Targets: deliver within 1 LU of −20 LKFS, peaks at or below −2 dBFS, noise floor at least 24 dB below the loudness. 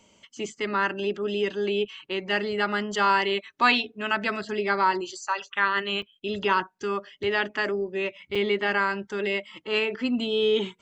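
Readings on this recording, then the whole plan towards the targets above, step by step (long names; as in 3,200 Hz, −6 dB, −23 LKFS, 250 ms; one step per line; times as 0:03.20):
number of dropouts 2; longest dropout 5.3 ms; integrated loudness −26.0 LKFS; sample peak −5.5 dBFS; target loudness −20.0 LKFS
→ repair the gap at 0:06.02/0:08.35, 5.3 ms
level +6 dB
brickwall limiter −2 dBFS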